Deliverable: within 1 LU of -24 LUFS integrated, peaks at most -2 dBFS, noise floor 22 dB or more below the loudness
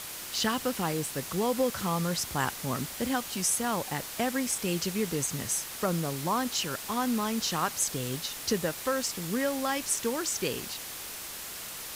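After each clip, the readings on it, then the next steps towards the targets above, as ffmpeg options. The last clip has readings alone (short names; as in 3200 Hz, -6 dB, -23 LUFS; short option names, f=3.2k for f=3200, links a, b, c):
noise floor -40 dBFS; noise floor target -52 dBFS; loudness -30.0 LUFS; peak -14.0 dBFS; loudness target -24.0 LUFS
-> -af "afftdn=nr=12:nf=-40"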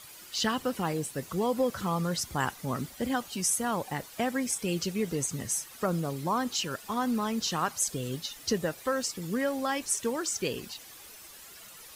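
noise floor -49 dBFS; noise floor target -53 dBFS
-> -af "afftdn=nr=6:nf=-49"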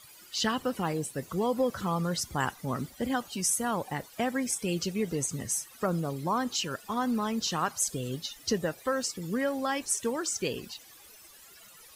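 noise floor -53 dBFS; loudness -31.0 LUFS; peak -15.0 dBFS; loudness target -24.0 LUFS
-> -af "volume=7dB"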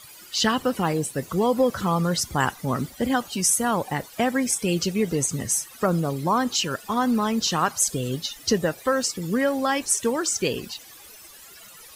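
loudness -24.0 LUFS; peak -8.0 dBFS; noise floor -46 dBFS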